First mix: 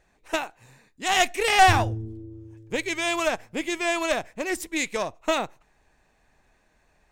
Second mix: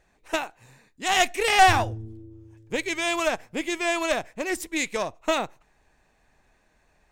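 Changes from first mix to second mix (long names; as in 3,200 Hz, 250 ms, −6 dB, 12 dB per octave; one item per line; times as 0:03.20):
background −7.0 dB
reverb: on, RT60 0.90 s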